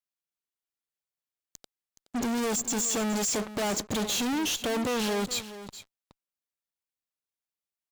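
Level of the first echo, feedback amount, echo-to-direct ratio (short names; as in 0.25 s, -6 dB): -14.0 dB, no steady repeat, -14.0 dB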